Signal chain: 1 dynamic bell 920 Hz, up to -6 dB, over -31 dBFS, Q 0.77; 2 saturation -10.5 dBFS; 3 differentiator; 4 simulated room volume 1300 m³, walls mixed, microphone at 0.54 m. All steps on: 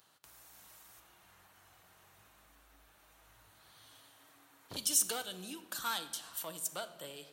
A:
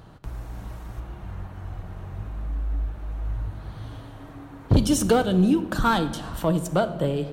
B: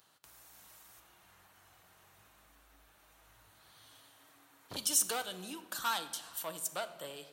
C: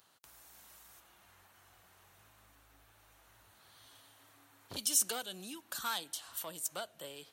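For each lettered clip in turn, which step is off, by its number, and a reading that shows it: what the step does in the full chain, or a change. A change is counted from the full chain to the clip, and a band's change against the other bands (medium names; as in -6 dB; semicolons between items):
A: 3, 8 kHz band -20.0 dB; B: 1, momentary loudness spread change -11 LU; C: 4, echo-to-direct -10.0 dB to none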